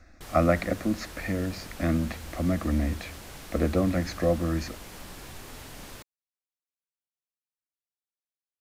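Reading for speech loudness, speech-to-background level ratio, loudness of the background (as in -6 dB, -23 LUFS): -28.5 LUFS, 15.0 dB, -43.5 LUFS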